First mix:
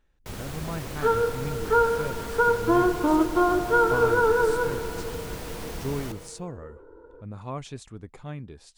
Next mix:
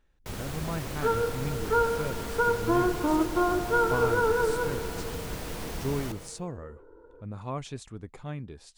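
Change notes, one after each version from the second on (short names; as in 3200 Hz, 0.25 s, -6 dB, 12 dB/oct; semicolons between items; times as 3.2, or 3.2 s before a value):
second sound -4.0 dB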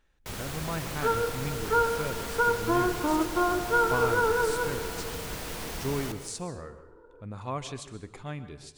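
speech: send on; master: add tilt shelf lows -3 dB, about 730 Hz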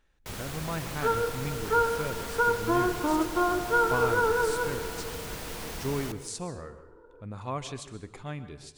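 first sound: send -6.5 dB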